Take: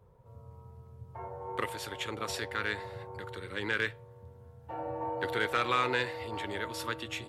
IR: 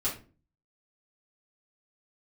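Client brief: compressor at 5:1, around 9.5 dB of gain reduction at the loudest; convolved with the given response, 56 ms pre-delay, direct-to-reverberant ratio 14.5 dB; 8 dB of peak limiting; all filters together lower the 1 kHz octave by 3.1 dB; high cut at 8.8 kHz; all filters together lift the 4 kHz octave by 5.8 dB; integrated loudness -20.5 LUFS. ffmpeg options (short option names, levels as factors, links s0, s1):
-filter_complex "[0:a]lowpass=8800,equalizer=f=1000:t=o:g=-4.5,equalizer=f=4000:t=o:g=7.5,acompressor=threshold=0.0178:ratio=5,alimiter=level_in=2:limit=0.0631:level=0:latency=1,volume=0.501,asplit=2[s0][s1];[1:a]atrim=start_sample=2205,adelay=56[s2];[s1][s2]afir=irnorm=-1:irlink=0,volume=0.0944[s3];[s0][s3]amix=inputs=2:normalize=0,volume=11.9"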